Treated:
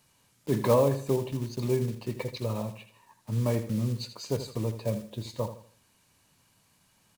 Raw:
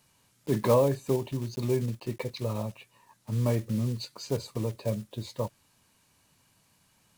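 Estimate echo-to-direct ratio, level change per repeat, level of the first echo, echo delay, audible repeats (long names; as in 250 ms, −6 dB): −10.5 dB, −9.5 dB, −11.0 dB, 80 ms, 3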